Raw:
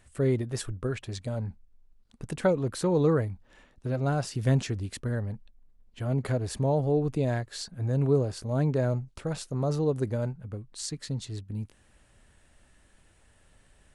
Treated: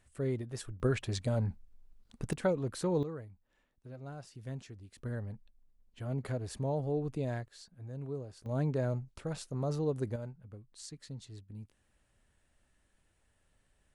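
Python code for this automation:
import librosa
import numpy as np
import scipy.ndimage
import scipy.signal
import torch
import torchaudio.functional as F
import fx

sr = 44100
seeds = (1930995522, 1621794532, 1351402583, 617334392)

y = fx.gain(x, sr, db=fx.steps((0.0, -8.5), (0.8, 1.0), (2.33, -6.0), (3.03, -18.0), (4.98, -8.0), (7.48, -16.0), (8.46, -6.0), (10.16, -12.0)))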